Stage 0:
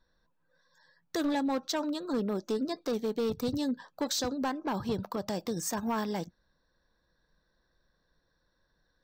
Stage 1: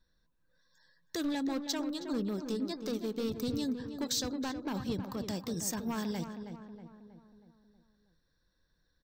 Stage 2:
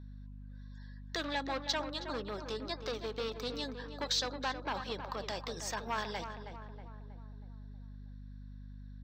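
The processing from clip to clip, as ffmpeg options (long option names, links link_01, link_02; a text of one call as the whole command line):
ffmpeg -i in.wav -filter_complex "[0:a]equalizer=frequency=790:width_type=o:width=2.2:gain=-9,asplit=2[link_01][link_02];[link_02]adelay=319,lowpass=frequency=1900:poles=1,volume=-8dB,asplit=2[link_03][link_04];[link_04]adelay=319,lowpass=frequency=1900:poles=1,volume=0.53,asplit=2[link_05][link_06];[link_06]adelay=319,lowpass=frequency=1900:poles=1,volume=0.53,asplit=2[link_07][link_08];[link_08]adelay=319,lowpass=frequency=1900:poles=1,volume=0.53,asplit=2[link_09][link_10];[link_10]adelay=319,lowpass=frequency=1900:poles=1,volume=0.53,asplit=2[link_11][link_12];[link_12]adelay=319,lowpass=frequency=1900:poles=1,volume=0.53[link_13];[link_03][link_05][link_07][link_09][link_11][link_13]amix=inputs=6:normalize=0[link_14];[link_01][link_14]amix=inputs=2:normalize=0" out.wav
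ffmpeg -i in.wav -filter_complex "[0:a]acrossover=split=520 4800:gain=0.0708 1 0.0794[link_01][link_02][link_03];[link_01][link_02][link_03]amix=inputs=3:normalize=0,aeval=exprs='val(0)+0.00224*(sin(2*PI*50*n/s)+sin(2*PI*2*50*n/s)/2+sin(2*PI*3*50*n/s)/3+sin(2*PI*4*50*n/s)/4+sin(2*PI*5*50*n/s)/5)':channel_layout=same,volume=6.5dB" out.wav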